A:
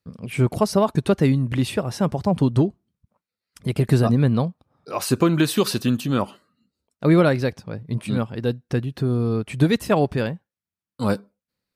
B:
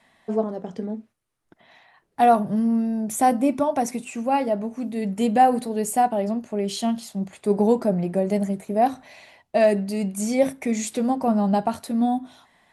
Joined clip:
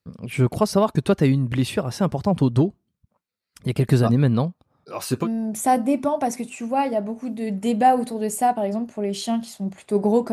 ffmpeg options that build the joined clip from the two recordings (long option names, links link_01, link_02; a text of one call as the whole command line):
ffmpeg -i cue0.wav -i cue1.wav -filter_complex "[0:a]asettb=1/sr,asplit=3[link_01][link_02][link_03];[link_01]atrim=end=4.844[link_04];[link_02]atrim=start=4.84:end=5.28,asetpts=PTS-STARTPTS,afade=type=in:duration=0.004:curve=qsin,afade=type=out:start_time=0.436:duration=0.004:curve=qsin,flanger=delay=4.7:depth=3.6:regen=-50:speed=1.7:shape=triangular[link_05];[link_03]atrim=start=5.276[link_06];[link_04][link_05]acrossfade=duration=0.004:curve1=hsin:curve2=qsin[link_07];[link_07][link_06]acrossfade=duration=0.004:curve1=qsin:curve2=hsin,apad=whole_dur=10.32,atrim=end=10.32,atrim=end=5.28,asetpts=PTS-STARTPTS[link_08];[1:a]atrim=start=2.77:end=7.87,asetpts=PTS-STARTPTS[link_09];[link_08][link_09]acrossfade=duration=0.06:curve1=tri:curve2=tri" out.wav